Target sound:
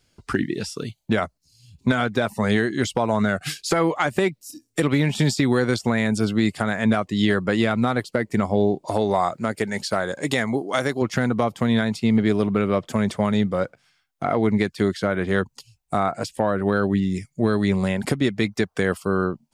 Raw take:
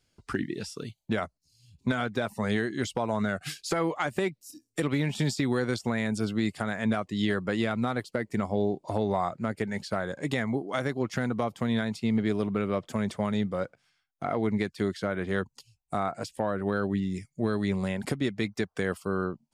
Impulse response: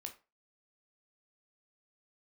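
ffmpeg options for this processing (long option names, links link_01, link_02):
-filter_complex "[0:a]asettb=1/sr,asplit=3[link_01][link_02][link_03];[link_01]atrim=end=8.864[link_04];[link_02]atrim=start=8.86:end=11.02,asetpts=PTS-STARTPTS,afade=type=in:duration=0.004:curve=qsin,afade=type=out:start_time=2.156:duration=0.004:curve=qsin,bass=frequency=250:gain=-5,treble=frequency=4000:gain=6[link_05];[link_03]atrim=start=11.016[link_06];[link_04][link_05]acrossfade=duration=0.004:curve1=hsin:curve2=qsin[link_07];[link_07][link_06]acrossfade=duration=0.004:curve1=qsin:curve2=hsin,volume=7.5dB"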